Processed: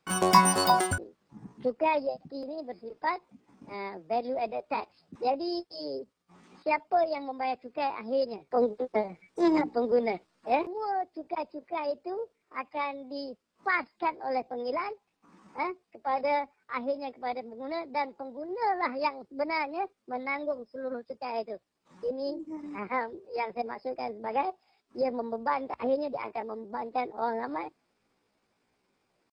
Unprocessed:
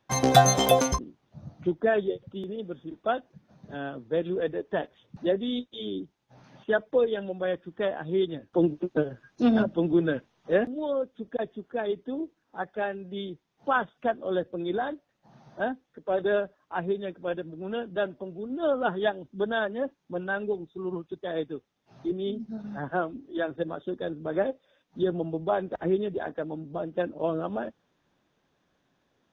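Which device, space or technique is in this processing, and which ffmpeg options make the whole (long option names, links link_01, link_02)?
chipmunk voice: -af "asetrate=62367,aresample=44100,atempo=0.707107,volume=-2.5dB"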